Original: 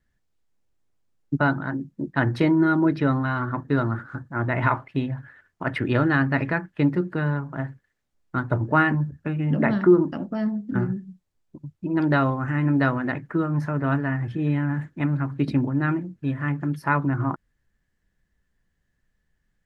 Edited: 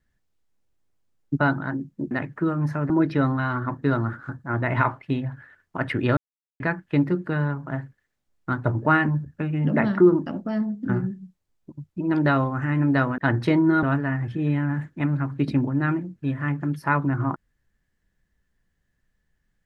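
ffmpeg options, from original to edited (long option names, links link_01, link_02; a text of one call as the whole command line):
ffmpeg -i in.wav -filter_complex "[0:a]asplit=7[link_01][link_02][link_03][link_04][link_05][link_06][link_07];[link_01]atrim=end=2.112[link_08];[link_02]atrim=start=13.038:end=13.832[link_09];[link_03]atrim=start=2.758:end=6.03,asetpts=PTS-STARTPTS,afade=type=out:start_time=3.268:duration=0.004:curve=hsin[link_10];[link_04]atrim=start=6.03:end=6.46,asetpts=PTS-STARTPTS,volume=0[link_11];[link_05]atrim=start=6.46:end=13.042,asetpts=PTS-STARTPTS,afade=type=in:duration=0.004:curve=hsin[link_12];[link_06]atrim=start=2.108:end=2.762[link_13];[link_07]atrim=start=13.828[link_14];[link_08][link_09]acrossfade=duration=0.004:curve1=hsin:curve2=hsin[link_15];[link_10][link_11][link_12]concat=n=3:v=0:a=1[link_16];[link_15][link_16]acrossfade=duration=0.004:curve1=hsin:curve2=hsin[link_17];[link_17][link_13]acrossfade=duration=0.004:curve1=hsin:curve2=hsin[link_18];[link_18][link_14]acrossfade=duration=0.004:curve1=hsin:curve2=hsin" out.wav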